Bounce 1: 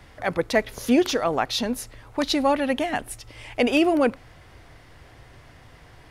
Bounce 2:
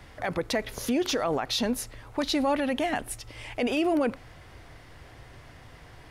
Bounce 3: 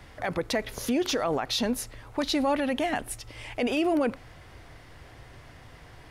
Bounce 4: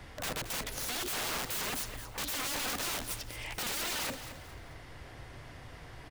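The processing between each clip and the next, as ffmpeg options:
-af "alimiter=limit=-18dB:level=0:latency=1:release=46"
-af anull
-af "aeval=exprs='(mod(33.5*val(0)+1,2)-1)/33.5':c=same,aecho=1:1:220|440|660:0.266|0.0878|0.029"

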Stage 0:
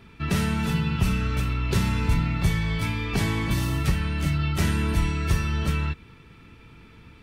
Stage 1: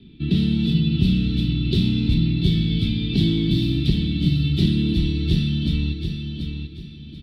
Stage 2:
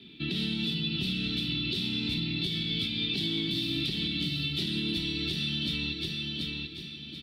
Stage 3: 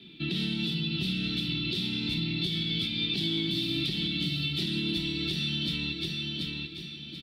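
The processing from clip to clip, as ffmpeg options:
-filter_complex "[0:a]firequalizer=gain_entry='entry(100,0);entry(150,6);entry(330,9);entry(480,-11);entry(1100,-26);entry(3600,7);entry(6300,-27)':delay=0.05:min_phase=1,acrossover=split=250|1000|4800[a][b][c][d];[d]dynaudnorm=f=280:g=3:m=12dB[e];[a][b][c][e]amix=inputs=4:normalize=0,aecho=1:1:735|1470|2205|2940:0.473|0.142|0.0426|0.0128"
-filter_complex "[0:a]highpass=f=1.1k:p=1,asplit=2[a][b];[b]acompressor=threshold=-38dB:ratio=6,volume=3dB[c];[a][c]amix=inputs=2:normalize=0,alimiter=limit=-21dB:level=0:latency=1:release=155"
-af "aecho=1:1:5.9:0.31"

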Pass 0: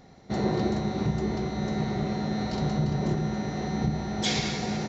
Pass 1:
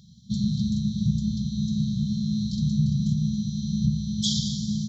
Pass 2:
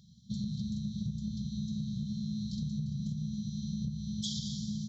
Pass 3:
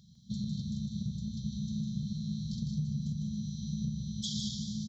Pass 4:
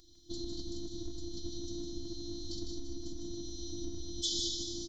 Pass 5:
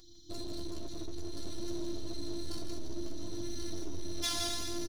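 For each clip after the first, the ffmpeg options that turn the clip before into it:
-af "highpass=61,afftfilt=real='re*(1-between(b*sr/4096,230,3100))':imag='im*(1-between(b*sr/4096,230,3100))':win_size=4096:overlap=0.75,adynamicequalizer=threshold=0.00398:dfrequency=3200:dqfactor=0.81:tfrequency=3200:tqfactor=0.81:attack=5:release=100:ratio=0.375:range=3:mode=cutabove:tftype=bell,volume=4.5dB"
-af "acompressor=threshold=-25dB:ratio=6,volume=-7dB"
-af "aecho=1:1:154.5|192.4:0.501|0.251"
-af "afftfilt=real='hypot(re,im)*cos(PI*b)':imag='0':win_size=512:overlap=0.75,volume=8dB"
-af "aeval=exprs='clip(val(0),-1,0.0119)':c=same,flanger=delay=8:depth=5.3:regen=37:speed=0.56:shape=triangular,aecho=1:1:1082:0.473,volume=7.5dB"

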